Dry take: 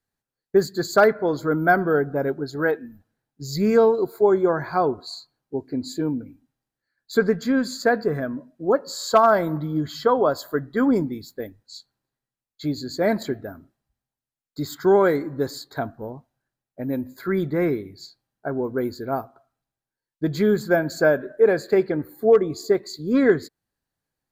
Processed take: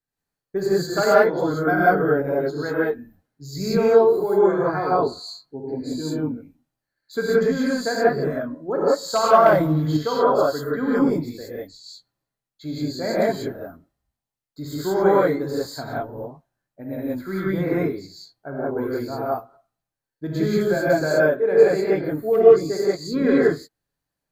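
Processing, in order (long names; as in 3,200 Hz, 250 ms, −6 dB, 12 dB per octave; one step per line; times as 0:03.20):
reverb whose tail is shaped and stops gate 210 ms rising, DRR −8 dB
0:09.46–0:09.97: leveller curve on the samples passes 1
level −7.5 dB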